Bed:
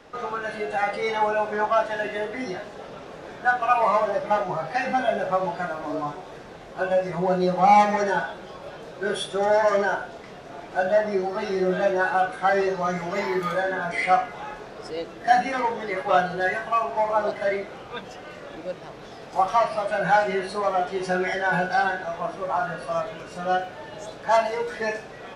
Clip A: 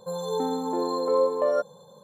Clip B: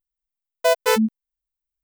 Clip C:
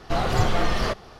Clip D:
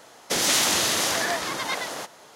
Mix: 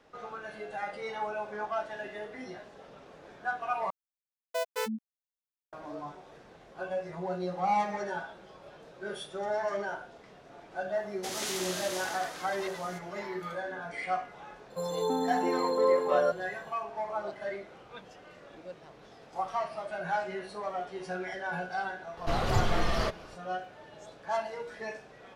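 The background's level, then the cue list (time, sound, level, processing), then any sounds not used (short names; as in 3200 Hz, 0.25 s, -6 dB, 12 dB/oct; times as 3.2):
bed -12 dB
3.9 replace with B -14.5 dB + HPF 140 Hz 6 dB/oct
10.93 add D -14.5 dB
14.7 add A -2.5 dB
22.17 add C -5.5 dB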